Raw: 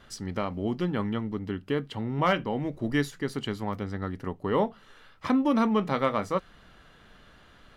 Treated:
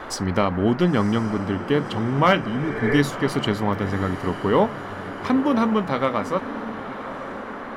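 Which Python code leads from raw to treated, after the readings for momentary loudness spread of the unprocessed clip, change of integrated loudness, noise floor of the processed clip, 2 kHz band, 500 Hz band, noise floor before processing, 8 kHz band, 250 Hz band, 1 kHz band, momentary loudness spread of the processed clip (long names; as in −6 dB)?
9 LU, +6.5 dB, −34 dBFS, +8.5 dB, +7.0 dB, −56 dBFS, +9.0 dB, +6.5 dB, +7.0 dB, 13 LU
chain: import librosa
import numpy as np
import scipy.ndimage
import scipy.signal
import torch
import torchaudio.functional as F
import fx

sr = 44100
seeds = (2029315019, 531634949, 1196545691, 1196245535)

p1 = fx.spec_repair(x, sr, seeds[0], start_s=2.45, length_s=0.5, low_hz=340.0, high_hz=2400.0, source='both')
p2 = fx.rider(p1, sr, range_db=10, speed_s=2.0)
p3 = fx.dmg_noise_band(p2, sr, seeds[1], low_hz=230.0, high_hz=1600.0, level_db=-42.0)
p4 = p3 + fx.echo_diffused(p3, sr, ms=1002, feedback_pct=52, wet_db=-13, dry=0)
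y = F.gain(torch.from_numpy(p4), 6.0).numpy()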